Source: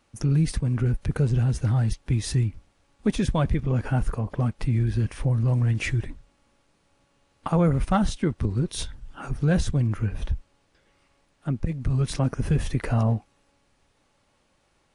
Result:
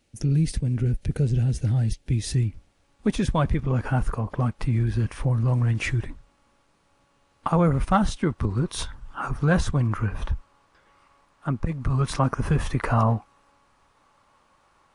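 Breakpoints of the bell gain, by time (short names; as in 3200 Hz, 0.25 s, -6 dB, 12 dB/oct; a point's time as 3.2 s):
bell 1100 Hz 0.99 oct
2.11 s -12.5 dB
2.45 s -3.5 dB
3.5 s +5.5 dB
8.09 s +5.5 dB
8.72 s +13 dB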